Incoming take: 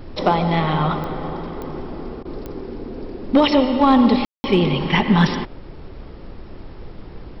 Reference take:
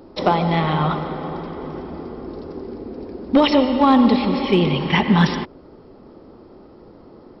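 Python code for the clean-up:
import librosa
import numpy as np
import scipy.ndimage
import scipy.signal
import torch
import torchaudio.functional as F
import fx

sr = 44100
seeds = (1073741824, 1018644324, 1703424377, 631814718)

y = fx.fix_declick_ar(x, sr, threshold=10.0)
y = fx.fix_ambience(y, sr, seeds[0], print_start_s=6.03, print_end_s=6.53, start_s=4.25, end_s=4.44)
y = fx.fix_interpolate(y, sr, at_s=(2.23,), length_ms=20.0)
y = fx.noise_reduce(y, sr, print_start_s=6.03, print_end_s=6.53, reduce_db=8.0)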